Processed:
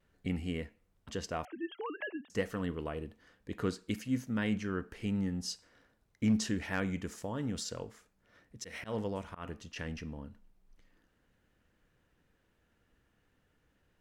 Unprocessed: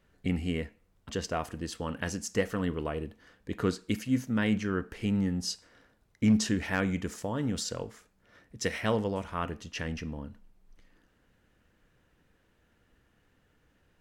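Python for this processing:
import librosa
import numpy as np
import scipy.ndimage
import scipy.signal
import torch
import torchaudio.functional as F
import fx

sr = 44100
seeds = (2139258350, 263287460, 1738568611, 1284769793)

y = fx.sine_speech(x, sr, at=(1.45, 2.3))
y = fx.auto_swell(y, sr, attack_ms=143.0, at=(8.61, 9.75), fade=0.02)
y = fx.vibrato(y, sr, rate_hz=0.37, depth_cents=12.0)
y = F.gain(torch.from_numpy(y), -5.0).numpy()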